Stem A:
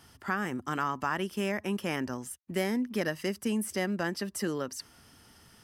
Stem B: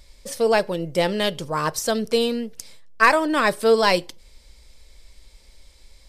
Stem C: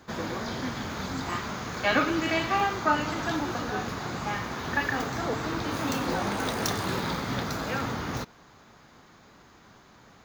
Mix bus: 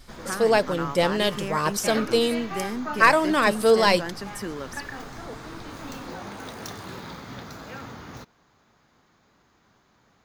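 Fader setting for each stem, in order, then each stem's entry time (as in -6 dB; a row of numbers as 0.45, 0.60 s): -1.5, -1.0, -8.5 dB; 0.00, 0.00, 0.00 s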